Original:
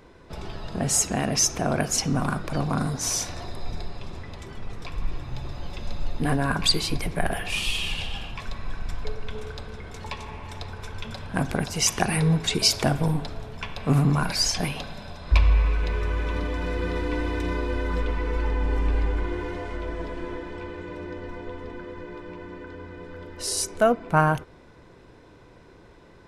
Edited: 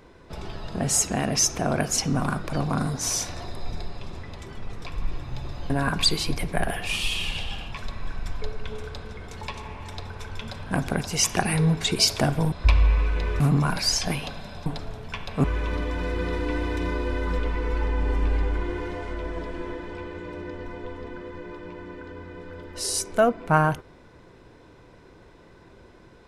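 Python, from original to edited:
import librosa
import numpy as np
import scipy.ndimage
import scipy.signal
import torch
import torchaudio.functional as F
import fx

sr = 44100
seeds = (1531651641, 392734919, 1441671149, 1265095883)

y = fx.edit(x, sr, fx.cut(start_s=5.7, length_s=0.63),
    fx.swap(start_s=13.15, length_s=0.78, other_s=15.19, other_length_s=0.88), tone=tone)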